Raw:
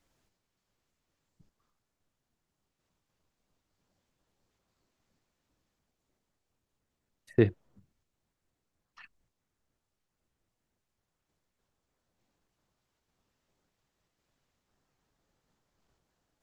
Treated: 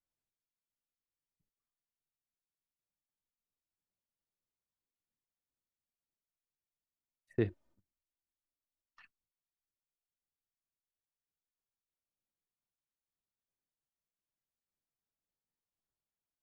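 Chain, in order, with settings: 7.48–9.00 s: comb 3.3 ms, depth 63%; gate -56 dBFS, range -15 dB; trim -8.5 dB

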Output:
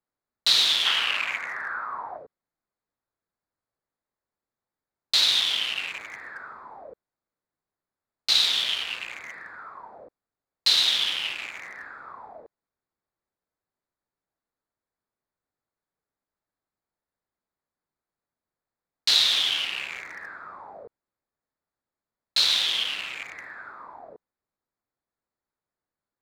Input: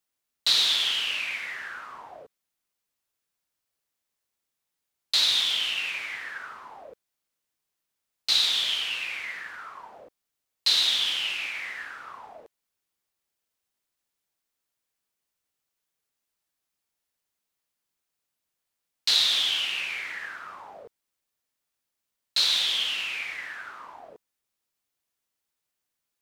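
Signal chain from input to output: local Wiener filter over 15 samples; 0.85–2.18 s: peaking EQ 1.2 kHz +9.5 dB 1.8 oct; trim +2.5 dB

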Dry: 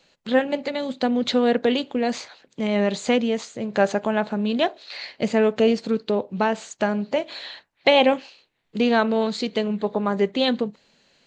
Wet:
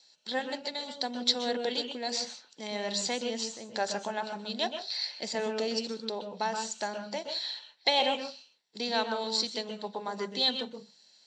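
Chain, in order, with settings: band-pass filter 7.1 kHz, Q 0.85; reverberation RT60 0.20 s, pre-delay 122 ms, DRR 6 dB; trim -1.5 dB

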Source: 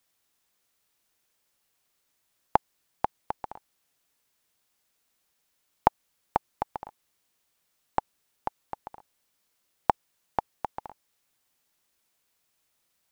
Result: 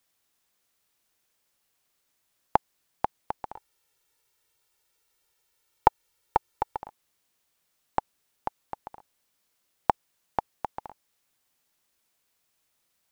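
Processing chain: 3.55–6.80 s: comb 2.2 ms, depth 62%

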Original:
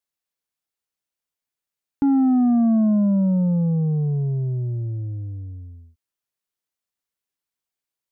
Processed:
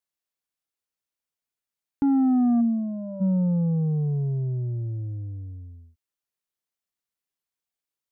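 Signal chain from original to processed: 2.60–3.20 s: band-pass filter 240 Hz -> 630 Hz, Q 2.2; trim -3 dB

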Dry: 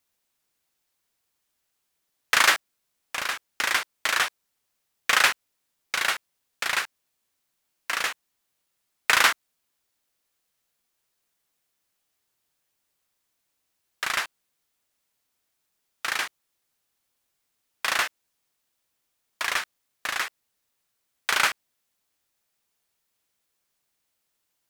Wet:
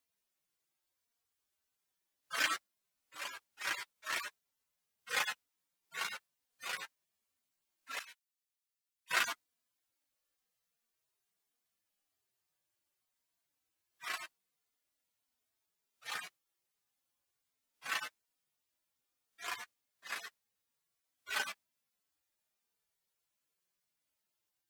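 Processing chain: harmonic-percussive separation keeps harmonic; 7.99–9.11 s: amplifier tone stack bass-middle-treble 5-5-5; trim -5 dB

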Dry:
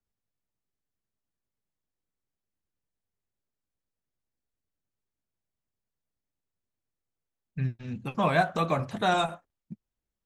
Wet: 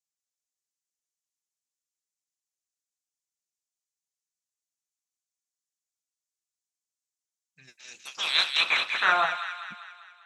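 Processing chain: 7.67–9.11 s: spectral peaks clipped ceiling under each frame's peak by 24 dB; band-pass sweep 6.8 kHz -> 870 Hz, 7.98–9.45 s; feedback echo behind a high-pass 198 ms, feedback 53%, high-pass 1.6 kHz, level -5 dB; trim +8.5 dB

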